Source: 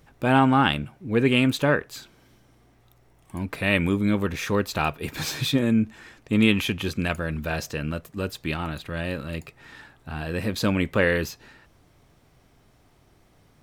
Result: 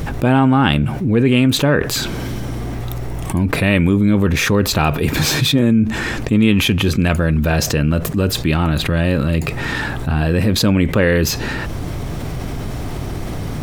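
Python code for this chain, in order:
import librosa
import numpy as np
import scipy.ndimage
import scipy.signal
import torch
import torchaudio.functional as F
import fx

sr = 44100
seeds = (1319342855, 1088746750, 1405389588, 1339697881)

y = fx.low_shelf(x, sr, hz=420.0, db=8.0)
y = fx.env_flatten(y, sr, amount_pct=70)
y = F.gain(torch.from_numpy(y), -1.0).numpy()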